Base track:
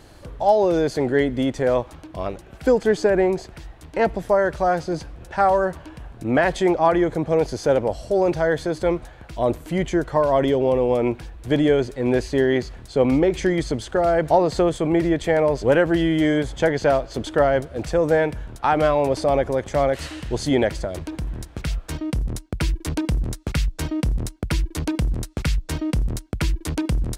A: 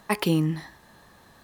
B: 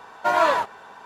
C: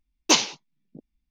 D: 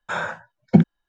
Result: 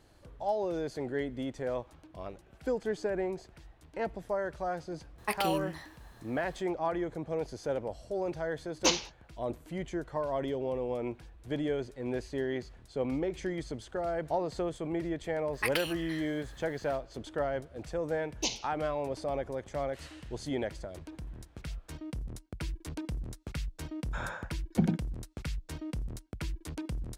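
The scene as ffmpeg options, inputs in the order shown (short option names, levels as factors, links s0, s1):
-filter_complex "[1:a]asplit=2[s0][s1];[3:a]asplit=2[s2][s3];[0:a]volume=0.188[s4];[s0]highpass=f=510:p=1[s5];[s1]highpass=f=1600:t=q:w=1.6[s6];[s3]asuperstop=centerf=1400:order=4:qfactor=0.98[s7];[4:a]aecho=1:1:96:0.631[s8];[s5]atrim=end=1.43,asetpts=PTS-STARTPTS,volume=0.596,afade=t=in:d=0.004:c=hsin,afade=t=out:st=1.426:d=0.004:c=hsin,adelay=5180[s9];[s2]atrim=end=1.3,asetpts=PTS-STARTPTS,volume=0.376,afade=t=in:d=0.004:c=hsin,afade=t=out:st=1.296:d=0.004:c=hsin,adelay=8550[s10];[s6]atrim=end=1.43,asetpts=PTS-STARTPTS,volume=0.631,afade=t=in:d=0.004:c=hsin,afade=t=out:st=1.426:d=0.004:c=hsin,adelay=15530[s11];[s7]atrim=end=1.3,asetpts=PTS-STARTPTS,volume=0.211,afade=t=in:d=0.004:c=hsin,afade=t=out:st=1.296:d=0.004:c=hsin,adelay=18130[s12];[s8]atrim=end=1.08,asetpts=PTS-STARTPTS,volume=0.211,afade=t=in:d=0.004:c=hsin,afade=t=out:st=1.076:d=0.004:c=hsin,adelay=24040[s13];[s4][s9][s10][s11][s12][s13]amix=inputs=6:normalize=0"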